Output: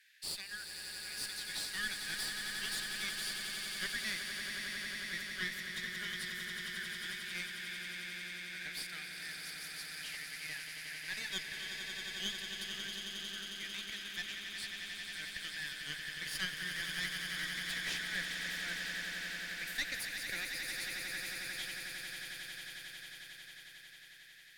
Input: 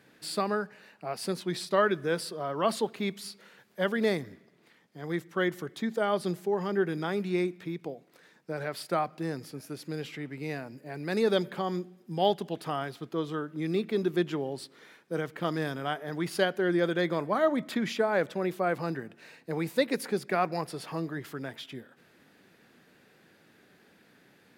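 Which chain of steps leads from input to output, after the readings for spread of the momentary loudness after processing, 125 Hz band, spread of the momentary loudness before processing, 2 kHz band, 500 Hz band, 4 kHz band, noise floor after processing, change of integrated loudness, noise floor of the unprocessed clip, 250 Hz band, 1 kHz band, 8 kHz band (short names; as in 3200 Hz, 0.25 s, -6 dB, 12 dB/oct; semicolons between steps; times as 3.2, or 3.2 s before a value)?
6 LU, -18.5 dB, 13 LU, 0.0 dB, -28.5 dB, +3.0 dB, -53 dBFS, -8.0 dB, -62 dBFS, -22.0 dB, -20.5 dB, +4.0 dB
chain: elliptic high-pass 1700 Hz, stop band 40 dB; one-sided clip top -43 dBFS; swelling echo 90 ms, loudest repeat 8, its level -8 dB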